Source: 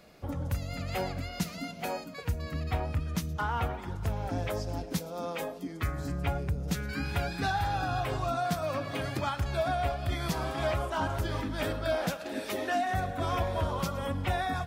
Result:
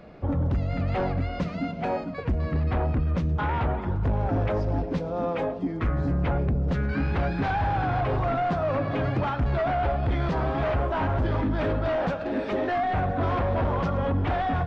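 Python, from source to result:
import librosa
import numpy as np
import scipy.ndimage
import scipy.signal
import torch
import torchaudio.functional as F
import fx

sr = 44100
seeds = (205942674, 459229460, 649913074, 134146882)

y = fx.fold_sine(x, sr, drive_db=10, ceiling_db=-17.0)
y = fx.spacing_loss(y, sr, db_at_10k=40)
y = y + 10.0 ** (-20.5 / 20.0) * np.pad(y, (int(1022 * sr / 1000.0), 0))[:len(y)]
y = F.gain(torch.from_numpy(y), -2.0).numpy()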